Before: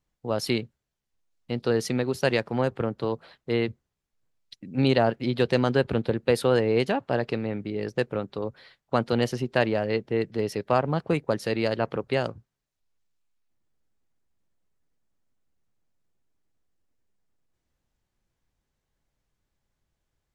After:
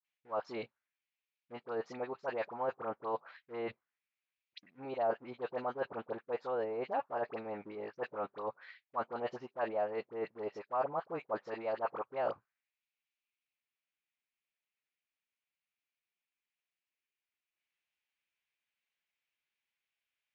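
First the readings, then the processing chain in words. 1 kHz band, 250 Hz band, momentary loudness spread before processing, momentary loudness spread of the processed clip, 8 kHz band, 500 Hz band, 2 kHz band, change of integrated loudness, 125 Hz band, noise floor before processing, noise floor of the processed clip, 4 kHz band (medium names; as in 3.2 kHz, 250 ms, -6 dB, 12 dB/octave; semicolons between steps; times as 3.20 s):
-6.5 dB, -20.0 dB, 9 LU, 9 LU, under -25 dB, -11.5 dB, -14.5 dB, -12.5 dB, -27.5 dB, -83 dBFS, under -85 dBFS, -22.5 dB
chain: dynamic bell 1.2 kHz, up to +6 dB, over -40 dBFS, Q 1.5; phase dispersion highs, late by 54 ms, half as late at 1.2 kHz; reverse; compression 8:1, threshold -31 dBFS, peak gain reduction 15 dB; reverse; peaking EQ 2.4 kHz +4 dB 0.32 oct; in parallel at -5.5 dB: crossover distortion -49 dBFS; on the sum: resampled via 16 kHz; auto-wah 630–2600 Hz, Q 2.2, down, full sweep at -25.5 dBFS; trim +1 dB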